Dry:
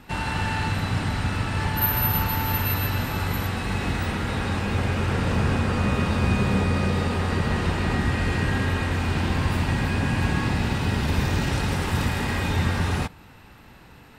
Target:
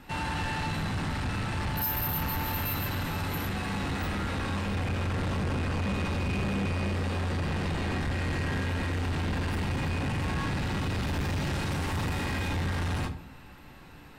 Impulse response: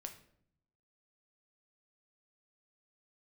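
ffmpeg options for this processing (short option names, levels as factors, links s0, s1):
-filter_complex "[1:a]atrim=start_sample=2205,asetrate=79380,aresample=44100[s0];[0:a][s0]afir=irnorm=-1:irlink=0,asoftclip=type=tanh:threshold=0.02,volume=2.37"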